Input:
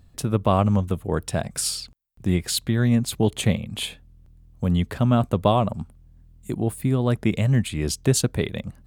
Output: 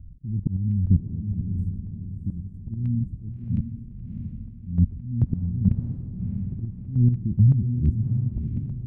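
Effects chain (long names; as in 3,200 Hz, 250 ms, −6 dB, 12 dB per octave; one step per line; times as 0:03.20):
loose part that buzzes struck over −28 dBFS, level −13 dBFS
inverse Chebyshev band-stop filter 590–3,900 Hz, stop band 50 dB
output level in coarse steps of 15 dB
low-shelf EQ 160 Hz +11.5 dB
volume swells 221 ms
tilt shelving filter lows +9 dB, about 1,200 Hz
auto-filter low-pass saw down 1.4 Hz 620–2,400 Hz
square-wave tremolo 2.3 Hz, depth 60%, duty 30%
on a send: feedback delay with all-pass diffusion 655 ms, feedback 40%, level −6 dB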